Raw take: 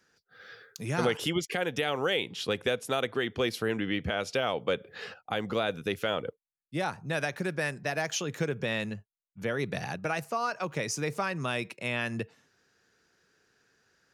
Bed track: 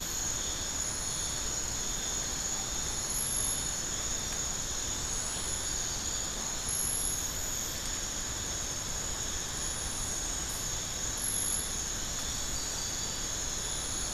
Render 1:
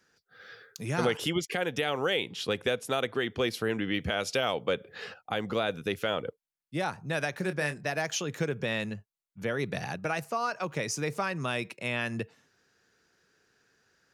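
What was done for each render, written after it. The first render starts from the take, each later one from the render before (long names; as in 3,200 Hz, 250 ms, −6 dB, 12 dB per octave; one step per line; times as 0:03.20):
0:03.94–0:04.59: high-shelf EQ 4,200 Hz +7.5 dB
0:07.37–0:07.86: double-tracking delay 27 ms −10 dB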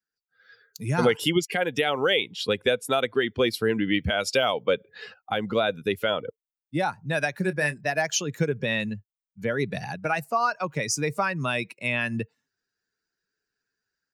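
spectral dynamics exaggerated over time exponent 1.5
automatic gain control gain up to 8.5 dB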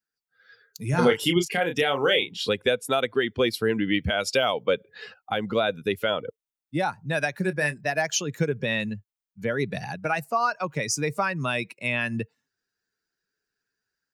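0:00.90–0:02.50: double-tracking delay 29 ms −6 dB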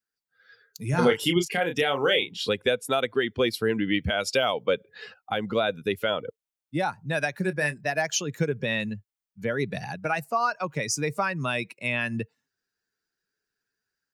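level −1 dB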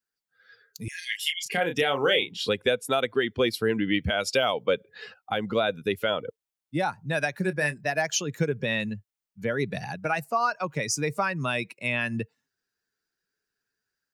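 0:00.88–0:01.46: linear-phase brick-wall high-pass 1,600 Hz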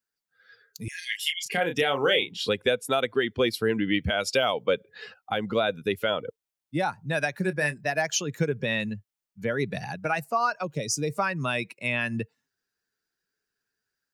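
0:10.63–0:11.10: flat-topped bell 1,400 Hz −11.5 dB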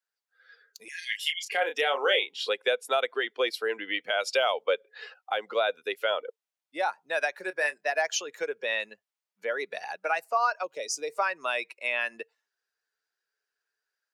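high-pass filter 470 Hz 24 dB per octave
high-shelf EQ 7,300 Hz −9 dB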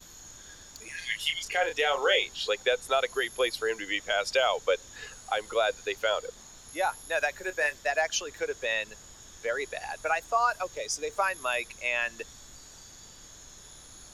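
mix in bed track −15 dB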